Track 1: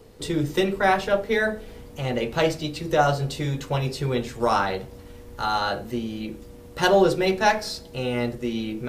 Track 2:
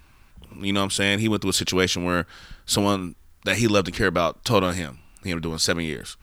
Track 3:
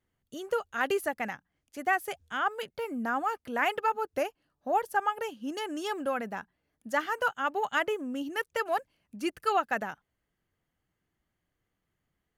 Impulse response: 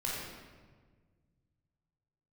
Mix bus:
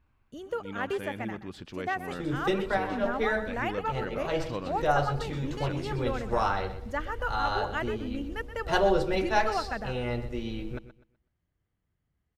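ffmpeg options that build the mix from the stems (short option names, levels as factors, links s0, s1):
-filter_complex "[0:a]asubboost=boost=6.5:cutoff=71,adelay=1900,volume=0.562,asplit=2[s0][s1];[s1]volume=0.211[s2];[1:a]equalizer=f=8800:w=0.34:g=-13,volume=0.168,asplit=3[s3][s4][s5];[s4]volume=0.106[s6];[2:a]equalizer=f=61:w=0.43:g=11.5,volume=0.596,asplit=2[s7][s8];[s8]volume=0.237[s9];[s5]apad=whole_len=475834[s10];[s0][s10]sidechaincompress=threshold=0.0112:ratio=8:attack=8.8:release=208[s11];[s2][s6][s9]amix=inputs=3:normalize=0,aecho=0:1:125|250|375|500:1|0.27|0.0729|0.0197[s12];[s11][s3][s7][s12]amix=inputs=4:normalize=0,lowpass=f=3700:p=1"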